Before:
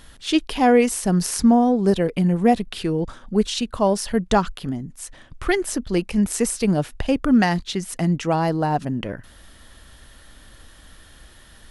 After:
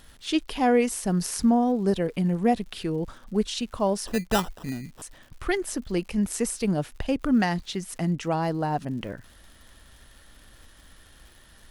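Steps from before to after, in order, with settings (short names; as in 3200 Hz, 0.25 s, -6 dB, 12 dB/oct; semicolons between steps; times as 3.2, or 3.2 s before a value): 4.07–5.02 sample-rate reducer 2200 Hz, jitter 0%; crackle 170/s -38 dBFS; gain -5.5 dB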